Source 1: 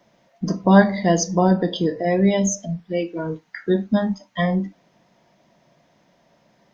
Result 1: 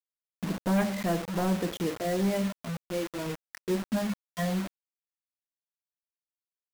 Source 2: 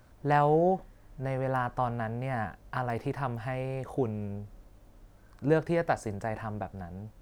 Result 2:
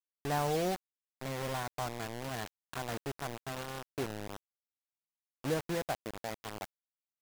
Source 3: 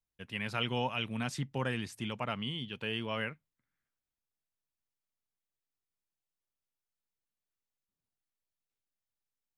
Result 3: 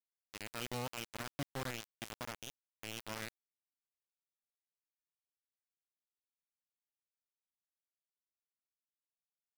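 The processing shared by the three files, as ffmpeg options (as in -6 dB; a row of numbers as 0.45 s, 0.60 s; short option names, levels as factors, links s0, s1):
-af "lowpass=f=2300:p=1,aresample=8000,asoftclip=type=tanh:threshold=0.224,aresample=44100,acrusher=bits=4:mix=0:aa=0.000001,volume=0.422"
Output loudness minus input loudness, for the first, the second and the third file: -10.5 LU, -7.0 LU, -8.5 LU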